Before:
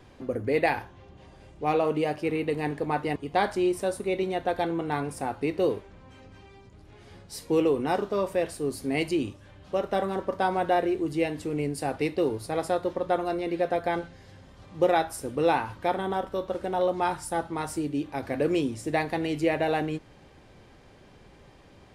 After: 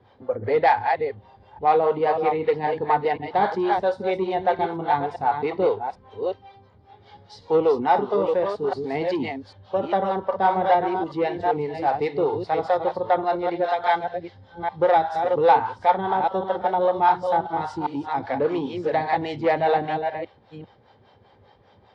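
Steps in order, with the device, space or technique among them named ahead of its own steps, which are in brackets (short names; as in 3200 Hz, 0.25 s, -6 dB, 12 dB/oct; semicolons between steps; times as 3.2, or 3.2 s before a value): reverse delay 0.397 s, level -6 dB; 13.64–14.04 tilt +3 dB/oct; guitar amplifier with harmonic tremolo (harmonic tremolo 5 Hz, depth 70%, crossover 430 Hz; soft clip -21 dBFS, distortion -17 dB; speaker cabinet 95–4100 Hz, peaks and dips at 100 Hz +7 dB, 150 Hz -6 dB, 310 Hz -8 dB, 480 Hz +4 dB, 850 Hz +8 dB, 2600 Hz -9 dB); spectral noise reduction 8 dB; gain +8 dB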